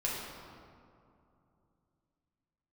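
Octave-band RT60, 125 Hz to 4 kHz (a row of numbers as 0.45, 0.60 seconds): 3.7, 3.3, 2.7, 2.6, 1.7, 1.2 seconds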